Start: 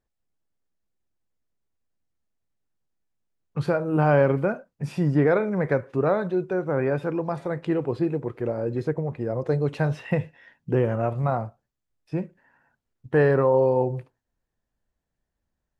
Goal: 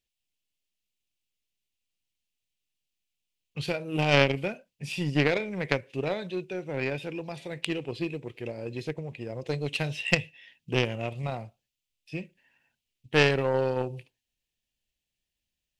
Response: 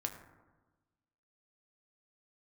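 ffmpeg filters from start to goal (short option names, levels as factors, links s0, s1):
-af "highshelf=f=1900:t=q:w=3:g=13,aeval=exprs='0.501*(cos(1*acos(clip(val(0)/0.501,-1,1)))-cos(1*PI/2))+0.126*(cos(3*acos(clip(val(0)/0.501,-1,1)))-cos(3*PI/2))':c=same,volume=1.41"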